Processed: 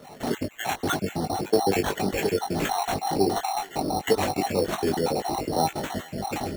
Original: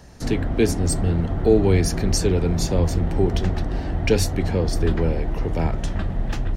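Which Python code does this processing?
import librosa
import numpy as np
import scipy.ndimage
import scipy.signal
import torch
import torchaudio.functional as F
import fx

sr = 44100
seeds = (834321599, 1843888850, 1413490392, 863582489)

p1 = fx.spec_dropout(x, sr, seeds[0], share_pct=54)
p2 = scipy.signal.sosfilt(scipy.signal.butter(2, 230.0, 'highpass', fs=sr, output='sos'), p1)
p3 = fx.peak_eq(p2, sr, hz=790.0, db=11.5, octaves=0.31)
p4 = fx.notch(p3, sr, hz=1600.0, q=7.2)
p5 = fx.over_compress(p4, sr, threshold_db=-32.0, ratio=-1.0)
p6 = p4 + (p5 * 10.0 ** (-2.5 / 20.0))
p7 = fx.sample_hold(p6, sr, seeds[1], rate_hz=4900.0, jitter_pct=0)
p8 = np.clip(p7, -10.0 ** (-9.0 / 20.0), 10.0 ** (-9.0 / 20.0))
p9 = fx.doubler(p8, sr, ms=20.0, db=-5.5)
p10 = p9 + fx.echo_thinned(p9, sr, ms=433, feedback_pct=56, hz=440.0, wet_db=-23, dry=0)
y = p10 * 10.0 ** (-2.0 / 20.0)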